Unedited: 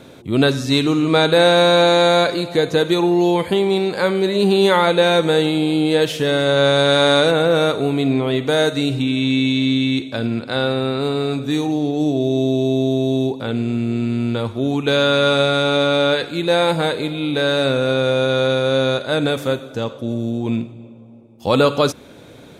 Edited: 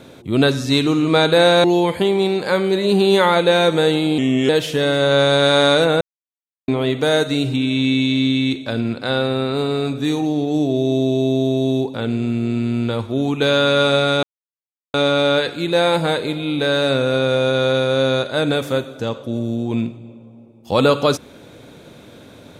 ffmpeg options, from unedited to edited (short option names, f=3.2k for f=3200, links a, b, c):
-filter_complex "[0:a]asplit=7[a][b][c][d][e][f][g];[a]atrim=end=1.642[h];[b]atrim=start=3.148:end=5.694[i];[c]atrim=start=5.69:end=5.95,asetpts=PTS-STARTPTS,asetrate=37044,aresample=44100[j];[d]atrim=start=5.946:end=7.47,asetpts=PTS-STARTPTS,afade=t=out:st=1.52:d=0.004:c=hsin[k];[e]atrim=start=7.47:end=8.14,asetpts=PTS-STARTPTS,volume=0[l];[f]atrim=start=8.14:end=15.69,asetpts=PTS-STARTPTS,afade=t=in:d=0.004:c=hsin,afade=t=out:st=7.546:d=0.004:c=hsin,apad=pad_dur=0.71[m];[g]atrim=start=15.69,asetpts=PTS-STARTPTS,afade=t=in:d=0.004:c=hsin[n];[h][i]acrossfade=d=0.004:c1=hsin:c2=hsin[o];[o][j]acrossfade=d=0.004:c1=hsin:c2=hsin[p];[k][l][m][n]concat=n=4:v=0:a=1[q];[p][q]acrossfade=d=0.004:c1=hsin:c2=hsin"